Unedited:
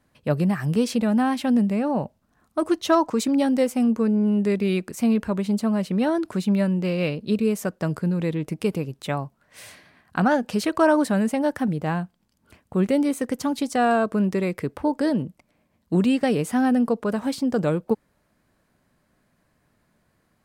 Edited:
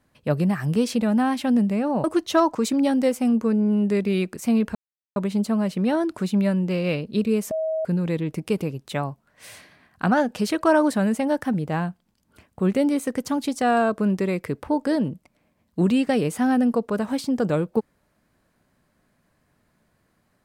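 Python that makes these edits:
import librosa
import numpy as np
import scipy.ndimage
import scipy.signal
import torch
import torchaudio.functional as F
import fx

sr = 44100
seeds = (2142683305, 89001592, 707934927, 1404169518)

y = fx.edit(x, sr, fx.cut(start_s=2.04, length_s=0.55),
    fx.insert_silence(at_s=5.3, length_s=0.41),
    fx.bleep(start_s=7.65, length_s=0.34, hz=637.0, db=-22.0), tone=tone)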